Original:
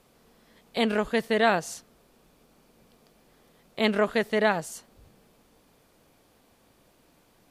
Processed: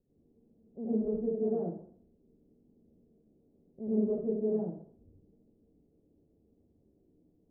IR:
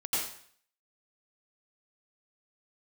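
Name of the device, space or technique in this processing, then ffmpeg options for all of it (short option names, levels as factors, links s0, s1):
next room: -filter_complex "[0:a]lowpass=f=410:w=0.5412,lowpass=f=410:w=1.3066[s0];[1:a]atrim=start_sample=2205[s1];[s0][s1]afir=irnorm=-1:irlink=0,volume=0.376"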